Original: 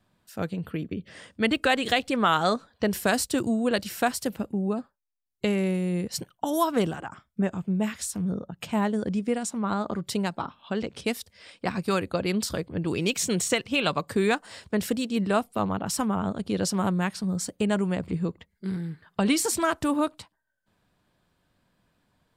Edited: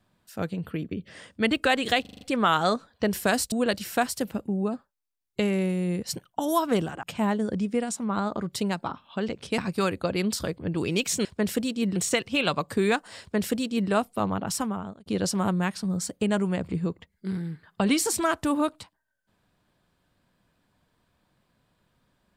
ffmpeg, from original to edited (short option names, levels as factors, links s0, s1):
-filter_complex "[0:a]asplit=12[s0][s1][s2][s3][s4][s5][s6][s7][s8][s9][s10][s11];[s0]atrim=end=2.052[s12];[s1]atrim=start=2.008:end=2.052[s13];[s2]atrim=start=2.008:end=2.052[s14];[s3]atrim=start=2.008:end=2.052[s15];[s4]atrim=start=2.008:end=2.052[s16];[s5]atrim=start=2.008:end=3.322[s17];[s6]atrim=start=3.568:end=7.082[s18];[s7]atrim=start=8.568:end=11.122[s19];[s8]atrim=start=11.678:end=13.352[s20];[s9]atrim=start=14.588:end=15.302[s21];[s10]atrim=start=13.348:end=16.45,asetpts=PTS-STARTPTS,afade=t=out:st=2.562:d=0.54[s22];[s11]atrim=start=16.45,asetpts=PTS-STARTPTS,afade=t=in:d=0.004:c=hsin[s23];[s12][s13]acrossfade=d=0.004:c1=hsin:c2=hsin[s24];[s24][s14]acrossfade=d=0.004:c1=hsin:c2=hsin[s25];[s25][s15]acrossfade=d=0.004:c1=hsin:c2=hsin[s26];[s26][s16]acrossfade=d=0.004:c1=hsin:c2=hsin[s27];[s27][s17]acrossfade=d=0.004:c1=hsin:c2=hsin[s28];[s28][s18]acrossfade=d=0.004:c1=hsin:c2=hsin[s29];[s29][s19]acrossfade=d=0.004:c1=hsin:c2=hsin[s30];[s30][s20]acrossfade=d=0.004:c1=hsin:c2=hsin[s31];[s31][s21]acrossfade=d=0.004:c1=hsin:c2=hsin[s32];[s22][s23]concat=n=2:v=0:a=1[s33];[s32][s33]acrossfade=d=0.004:c1=hsin:c2=hsin"